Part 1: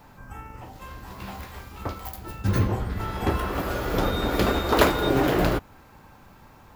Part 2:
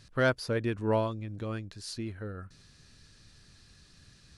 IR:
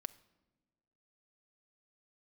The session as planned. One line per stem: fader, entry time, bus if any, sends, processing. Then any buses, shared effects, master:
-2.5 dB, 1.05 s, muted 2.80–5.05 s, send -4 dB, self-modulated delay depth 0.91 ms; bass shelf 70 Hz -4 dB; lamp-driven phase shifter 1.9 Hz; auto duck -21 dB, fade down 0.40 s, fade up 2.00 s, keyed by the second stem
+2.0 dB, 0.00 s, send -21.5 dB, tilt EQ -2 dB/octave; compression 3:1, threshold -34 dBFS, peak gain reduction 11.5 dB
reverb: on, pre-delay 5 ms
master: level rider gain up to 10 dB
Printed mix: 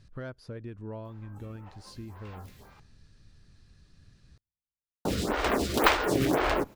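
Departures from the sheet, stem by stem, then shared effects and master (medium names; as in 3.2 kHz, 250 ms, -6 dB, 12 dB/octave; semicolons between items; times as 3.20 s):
stem 2 +2.0 dB -> -6.0 dB; master: missing level rider gain up to 10 dB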